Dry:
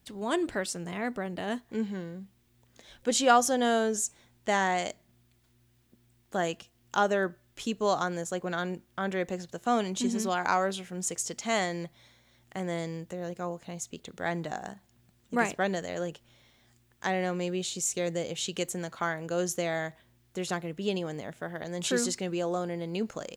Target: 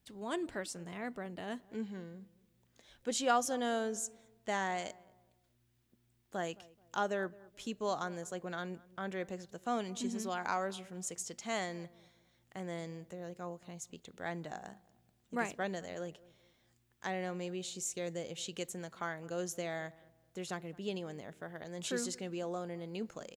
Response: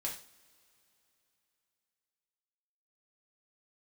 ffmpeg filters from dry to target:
-filter_complex "[0:a]asplit=2[a][b];[b]adelay=215,lowpass=f=1.1k:p=1,volume=-20.5dB,asplit=2[c][d];[d]adelay=215,lowpass=f=1.1k:p=1,volume=0.35,asplit=2[e][f];[f]adelay=215,lowpass=f=1.1k:p=1,volume=0.35[g];[a][c][e][g]amix=inputs=4:normalize=0,volume=-8.5dB"

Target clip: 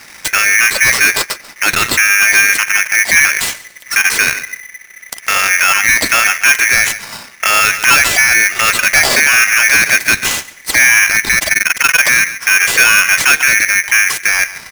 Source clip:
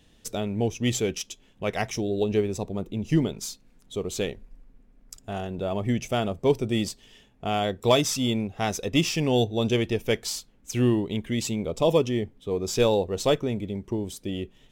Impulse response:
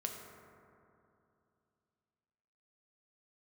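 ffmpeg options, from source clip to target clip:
-filter_complex "[0:a]aeval=exprs='if(lt(val(0),0),0.447*val(0),val(0))':c=same,asettb=1/sr,asplit=3[a][b][c];[a]atrim=end=1.754[d];[b]atrim=start=1.75:end=2.8,asetpts=PTS-STARTPTS,afade=t=in:d=0.004:c=qsin,afade=t=out:st=1.046:d=0.004:c=qsin,agate=range=-33dB:threshold=-32dB:ratio=3:detection=peak[e];[c]atrim=start=2.796[f];[d][e]acrossfade=d=0.004:c1=hsin:c2=qsin[g];[g][f]acrossfade=d=0.004:c1=qsin:c2=hsin,lowshelf=f=180:g=-8.5,acrossover=split=3200[h][i];[h]asoftclip=type=tanh:threshold=-20dB[j];[i]acompressor=threshold=-47dB:ratio=6[k];[j][k]amix=inputs=2:normalize=0,asplit=3[l][m][n];[l]afade=t=out:st=11.37:d=0.02[o];[m]tremolo=f=21:d=0.974,afade=t=in:st=11.37:d=0.02,afade=t=out:st=11.99:d=0.02[p];[n]afade=t=in:st=11.99:d=0.02[q];[o][p][q]amix=inputs=3:normalize=0,asplit=2[r][s];[s]aecho=0:1:139|278:0.1|0.024[t];[r][t]amix=inputs=2:normalize=0,alimiter=level_in=29dB:limit=-1dB:release=50:level=0:latency=1,aeval=exprs='val(0)*sgn(sin(2*PI*2000*n/s))':c=same,volume=-1dB"

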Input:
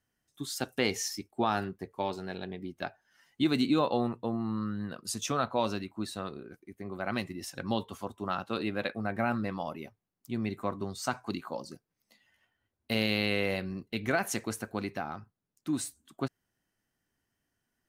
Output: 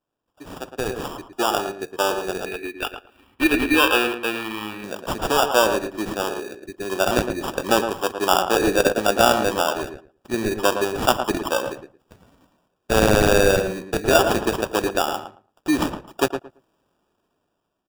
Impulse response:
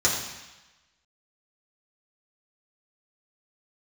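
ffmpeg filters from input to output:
-filter_complex "[0:a]highpass=120,lowshelf=f=270:t=q:w=1.5:g=-10.5,acrusher=samples=21:mix=1:aa=0.000001,asettb=1/sr,asplit=3[a][b][c];[a]atrim=end=2.464[d];[b]atrim=start=2.46:end=4.84,asetpts=PTS-STARTPTS,afade=t=in:d=0.004:c=qsin,afade=t=out:st=2.376:d=0.004:c=qsin,equalizer=f=160:t=o:w=0.67:g=-11,equalizer=f=630:t=o:w=0.67:g=-9,equalizer=f=2.5k:t=o:w=0.67:g=10,equalizer=f=6.3k:t=o:w=0.67:g=-10[e];[c]atrim=start=4.836[f];[d][e]acrossfade=d=0.004:c1=hsin:c2=qsin[g];[g][f]acrossfade=d=0.004:c1=qsin:c2=hsin,dynaudnorm=f=630:g=5:m=15dB,asplit=2[h][i];[i]adelay=112,lowpass=f=1.8k:p=1,volume=-7dB,asplit=2[j][k];[k]adelay=112,lowpass=f=1.8k:p=1,volume=0.18,asplit=2[l][m];[m]adelay=112,lowpass=f=1.8k:p=1,volume=0.18[n];[h][j][l][n]amix=inputs=4:normalize=0"

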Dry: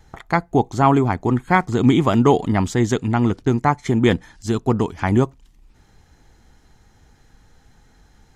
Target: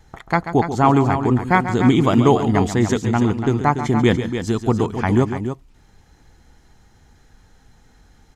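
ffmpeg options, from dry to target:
-af "aecho=1:1:137|288.6:0.282|0.355"

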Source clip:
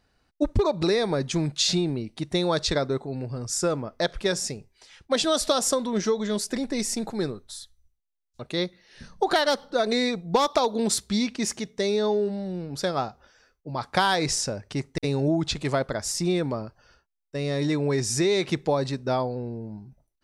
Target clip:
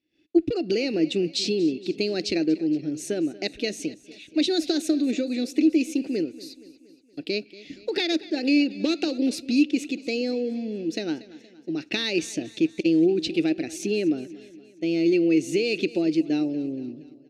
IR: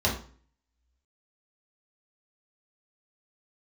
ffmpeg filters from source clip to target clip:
-filter_complex "[0:a]asplit=3[a][b][c];[a]bandpass=f=270:t=q:w=8,volume=0dB[d];[b]bandpass=f=2.29k:t=q:w=8,volume=-6dB[e];[c]bandpass=f=3.01k:t=q:w=8,volume=-9dB[f];[d][e][f]amix=inputs=3:normalize=0,asplit=2[g][h];[h]acompressor=threshold=-46dB:ratio=6,volume=-0.5dB[i];[g][i]amix=inputs=2:normalize=0,asetrate=51597,aresample=44100,dynaudnorm=f=100:g=3:m=16.5dB,aecho=1:1:235|470|705|940|1175:0.119|0.0666|0.0373|0.0209|0.0117,volume=-5dB"

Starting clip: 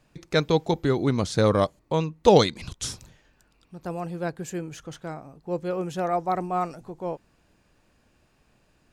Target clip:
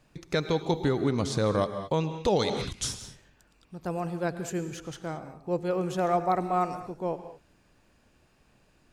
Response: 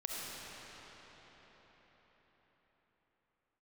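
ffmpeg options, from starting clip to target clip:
-filter_complex "[0:a]asplit=2[a][b];[1:a]atrim=start_sample=2205,afade=t=out:st=0.19:d=0.01,atrim=end_sample=8820,asetrate=27342,aresample=44100[c];[b][c]afir=irnorm=-1:irlink=0,volume=-7dB[d];[a][d]amix=inputs=2:normalize=0,alimiter=limit=-11.5dB:level=0:latency=1:release=260,volume=-3dB"

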